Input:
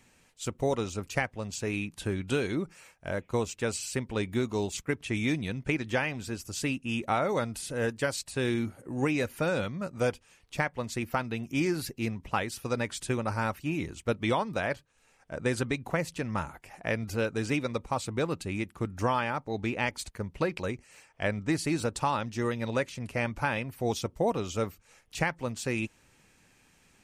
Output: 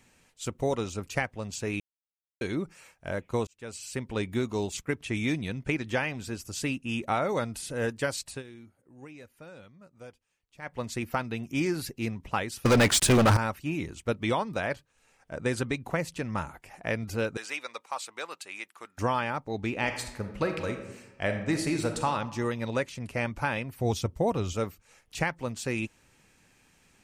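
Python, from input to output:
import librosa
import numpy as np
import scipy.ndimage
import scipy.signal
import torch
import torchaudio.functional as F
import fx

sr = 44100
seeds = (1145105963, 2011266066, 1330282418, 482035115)

y = fx.leveller(x, sr, passes=5, at=(12.65, 13.37))
y = fx.highpass(y, sr, hz=910.0, slope=12, at=(17.37, 18.98))
y = fx.reverb_throw(y, sr, start_s=19.7, length_s=2.4, rt60_s=1.0, drr_db=5.5)
y = fx.peak_eq(y, sr, hz=82.0, db=9.5, octaves=1.5, at=(23.78, 24.53))
y = fx.edit(y, sr, fx.silence(start_s=1.8, length_s=0.61),
    fx.fade_in_span(start_s=3.47, length_s=0.65),
    fx.fade_down_up(start_s=8.31, length_s=2.42, db=-19.0, fade_s=0.12), tone=tone)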